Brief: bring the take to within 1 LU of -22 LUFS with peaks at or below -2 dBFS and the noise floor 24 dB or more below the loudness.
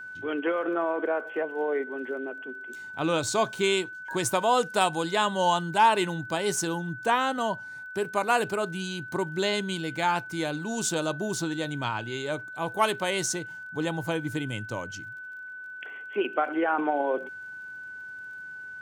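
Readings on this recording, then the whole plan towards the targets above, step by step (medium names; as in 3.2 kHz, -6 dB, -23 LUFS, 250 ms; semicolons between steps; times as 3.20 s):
tick rate 28 per s; steady tone 1.5 kHz; tone level -38 dBFS; loudness -28.0 LUFS; peak level -11.0 dBFS; loudness target -22.0 LUFS
-> de-click; band-stop 1.5 kHz, Q 30; trim +6 dB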